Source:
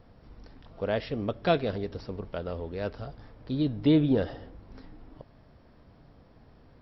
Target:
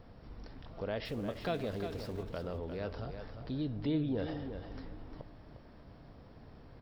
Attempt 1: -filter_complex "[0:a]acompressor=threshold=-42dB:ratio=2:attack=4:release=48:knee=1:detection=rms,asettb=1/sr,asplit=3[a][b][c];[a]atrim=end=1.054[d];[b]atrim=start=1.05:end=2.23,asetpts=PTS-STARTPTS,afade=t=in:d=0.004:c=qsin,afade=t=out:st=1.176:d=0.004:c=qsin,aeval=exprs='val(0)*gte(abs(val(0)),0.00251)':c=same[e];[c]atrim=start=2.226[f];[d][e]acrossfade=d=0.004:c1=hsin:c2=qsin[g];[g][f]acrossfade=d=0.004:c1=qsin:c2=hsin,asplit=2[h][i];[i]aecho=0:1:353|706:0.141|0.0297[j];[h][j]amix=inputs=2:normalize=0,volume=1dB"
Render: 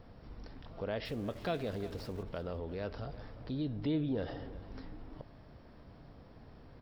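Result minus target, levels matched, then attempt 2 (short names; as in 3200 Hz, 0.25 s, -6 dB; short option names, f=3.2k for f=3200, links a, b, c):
echo-to-direct -8.5 dB
-filter_complex "[0:a]acompressor=threshold=-42dB:ratio=2:attack=4:release=48:knee=1:detection=rms,asettb=1/sr,asplit=3[a][b][c];[a]atrim=end=1.054[d];[b]atrim=start=1.05:end=2.23,asetpts=PTS-STARTPTS,afade=t=in:d=0.004:c=qsin,afade=t=out:st=1.176:d=0.004:c=qsin,aeval=exprs='val(0)*gte(abs(val(0)),0.00251)':c=same[e];[c]atrim=start=2.226[f];[d][e]acrossfade=d=0.004:c1=hsin:c2=qsin[g];[g][f]acrossfade=d=0.004:c1=qsin:c2=hsin,asplit=2[h][i];[i]aecho=0:1:353|706|1059:0.376|0.0789|0.0166[j];[h][j]amix=inputs=2:normalize=0,volume=1dB"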